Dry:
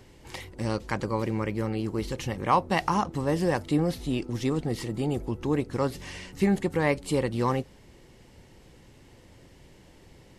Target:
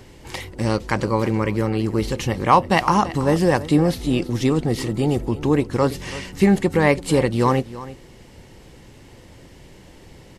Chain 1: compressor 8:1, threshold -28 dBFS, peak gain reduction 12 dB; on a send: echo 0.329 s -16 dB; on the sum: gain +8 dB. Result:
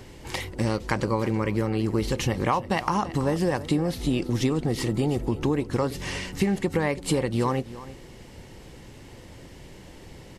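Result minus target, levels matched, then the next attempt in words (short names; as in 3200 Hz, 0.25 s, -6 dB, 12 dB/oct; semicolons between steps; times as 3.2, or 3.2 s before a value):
compressor: peak gain reduction +12 dB
on a send: echo 0.329 s -16 dB; on the sum: gain +8 dB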